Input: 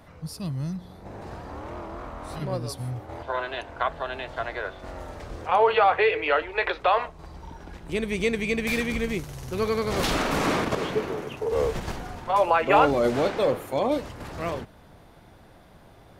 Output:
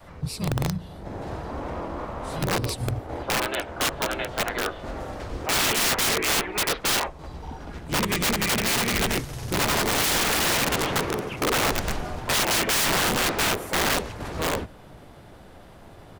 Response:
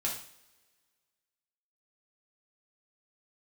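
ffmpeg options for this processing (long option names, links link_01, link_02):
-filter_complex "[0:a]asplit=4[link_01][link_02][link_03][link_04];[link_02]asetrate=22050,aresample=44100,atempo=2,volume=-8dB[link_05];[link_03]asetrate=35002,aresample=44100,atempo=1.25992,volume=-16dB[link_06];[link_04]asetrate=37084,aresample=44100,atempo=1.18921,volume=-2dB[link_07];[link_01][link_05][link_06][link_07]amix=inputs=4:normalize=0,adynamicequalizer=threshold=0.0178:dfrequency=200:dqfactor=0.74:tfrequency=200:tqfactor=0.74:attack=5:release=100:ratio=0.375:range=1.5:mode=cutabove:tftype=bell,aeval=exprs='(mod(10*val(0)+1,2)-1)/10':channel_layout=same,volume=2.5dB"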